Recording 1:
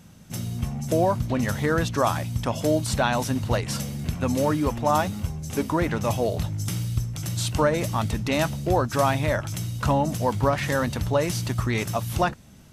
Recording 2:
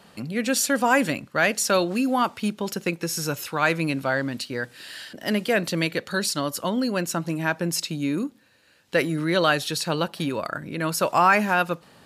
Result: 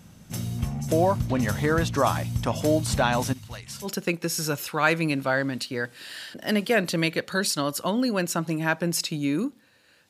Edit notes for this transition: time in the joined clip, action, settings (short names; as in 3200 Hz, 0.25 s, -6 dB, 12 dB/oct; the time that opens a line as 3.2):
recording 1
3.33–3.89 passive tone stack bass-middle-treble 5-5-5
3.85 switch to recording 2 from 2.64 s, crossfade 0.08 s